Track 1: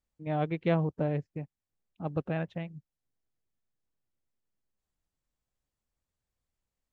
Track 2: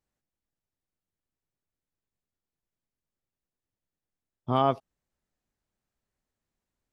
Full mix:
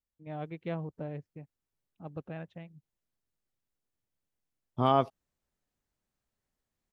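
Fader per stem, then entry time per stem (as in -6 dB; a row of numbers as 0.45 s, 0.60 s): -9.0 dB, -1.0 dB; 0.00 s, 0.30 s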